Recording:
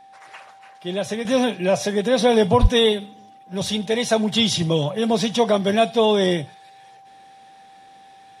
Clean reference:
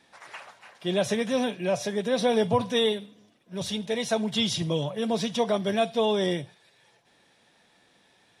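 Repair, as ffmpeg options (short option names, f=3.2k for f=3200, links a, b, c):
-filter_complex "[0:a]bandreject=f=780:w=30,asplit=3[a][b][c];[a]afade=t=out:st=2.61:d=0.02[d];[b]highpass=f=140:w=0.5412,highpass=f=140:w=1.3066,afade=t=in:st=2.61:d=0.02,afade=t=out:st=2.73:d=0.02[e];[c]afade=t=in:st=2.73:d=0.02[f];[d][e][f]amix=inputs=3:normalize=0,asetnsamples=n=441:p=0,asendcmd='1.25 volume volume -7dB',volume=0dB"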